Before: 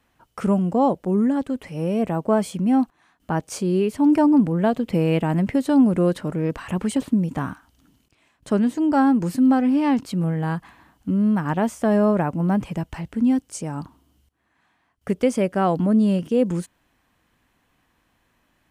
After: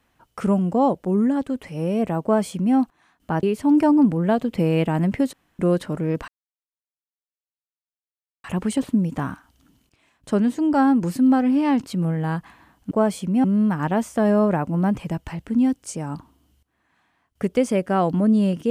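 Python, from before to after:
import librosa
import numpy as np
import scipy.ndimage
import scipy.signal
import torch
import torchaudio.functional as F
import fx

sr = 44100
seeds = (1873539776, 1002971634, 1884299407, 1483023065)

y = fx.edit(x, sr, fx.duplicate(start_s=2.23, length_s=0.53, to_s=11.1),
    fx.cut(start_s=3.43, length_s=0.35),
    fx.room_tone_fill(start_s=5.68, length_s=0.26),
    fx.insert_silence(at_s=6.63, length_s=2.16), tone=tone)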